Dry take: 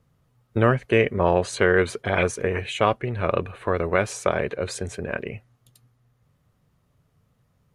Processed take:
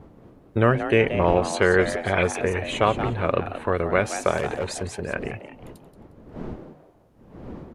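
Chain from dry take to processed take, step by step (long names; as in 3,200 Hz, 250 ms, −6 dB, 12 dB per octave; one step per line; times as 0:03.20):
wind on the microphone 330 Hz −39 dBFS
0:04.37–0:05.01: hard clipping −19.5 dBFS, distortion −28 dB
echo with shifted repeats 178 ms, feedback 31%, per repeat +150 Hz, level −11 dB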